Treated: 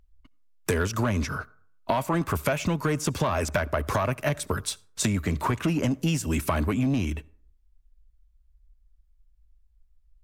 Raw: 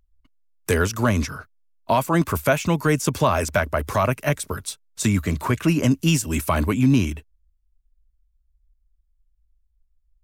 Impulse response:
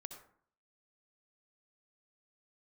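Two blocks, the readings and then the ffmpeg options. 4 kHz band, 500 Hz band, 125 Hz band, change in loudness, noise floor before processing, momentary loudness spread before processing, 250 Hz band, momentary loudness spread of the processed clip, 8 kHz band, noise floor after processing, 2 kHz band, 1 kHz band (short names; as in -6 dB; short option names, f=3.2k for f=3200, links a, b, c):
-4.0 dB, -5.0 dB, -5.0 dB, -5.5 dB, -67 dBFS, 10 LU, -5.5 dB, 7 LU, -4.0 dB, -62 dBFS, -5.0 dB, -5.0 dB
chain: -filter_complex "[0:a]asoftclip=type=tanh:threshold=-13dB,highshelf=f=6.5k:g=-7,acompressor=threshold=-27dB:ratio=6,asplit=2[a][b];[1:a]atrim=start_sample=2205[c];[b][c]afir=irnorm=-1:irlink=0,volume=-12.5dB[d];[a][d]amix=inputs=2:normalize=0,volume=3.5dB"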